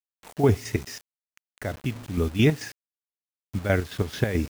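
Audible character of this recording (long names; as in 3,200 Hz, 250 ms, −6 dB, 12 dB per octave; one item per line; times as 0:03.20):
chopped level 4.6 Hz, depth 60%, duty 50%
a quantiser's noise floor 8 bits, dither none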